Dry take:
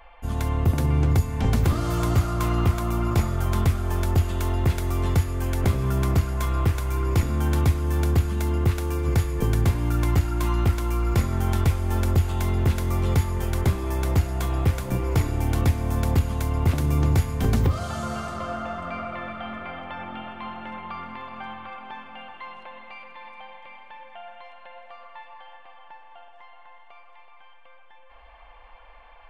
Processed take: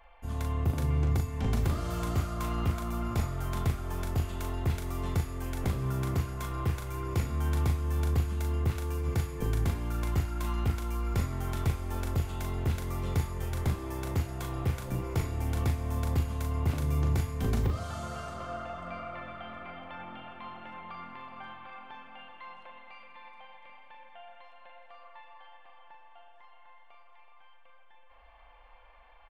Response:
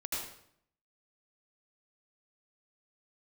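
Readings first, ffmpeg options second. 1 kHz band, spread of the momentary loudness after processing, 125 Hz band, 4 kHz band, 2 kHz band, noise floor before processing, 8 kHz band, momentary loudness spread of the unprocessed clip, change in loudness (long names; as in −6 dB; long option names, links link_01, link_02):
−7.5 dB, 18 LU, −8.0 dB, −7.5 dB, −8.0 dB, −48 dBFS, −7.5 dB, 17 LU, −8.0 dB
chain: -filter_complex "[0:a]asplit=2[link_01][link_02];[link_02]adelay=39,volume=-6dB[link_03];[link_01][link_03]amix=inputs=2:normalize=0,volume=-8.5dB"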